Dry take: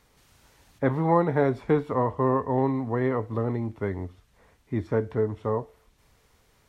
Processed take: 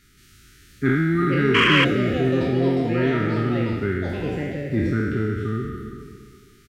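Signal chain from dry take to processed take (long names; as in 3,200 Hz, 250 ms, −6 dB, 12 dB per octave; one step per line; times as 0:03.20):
peak hold with a decay on every bin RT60 1.94 s
linear-phase brick-wall band-stop 420–1,200 Hz
single-tap delay 364 ms −14 dB
delay with pitch and tempo change per echo 684 ms, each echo +5 semitones, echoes 3, each echo −6 dB
sound drawn into the spectrogram noise, 0:01.54–0:01.85, 970–3,300 Hz −21 dBFS
in parallel at −3 dB: soft clipping −18.5 dBFS, distortion −14 dB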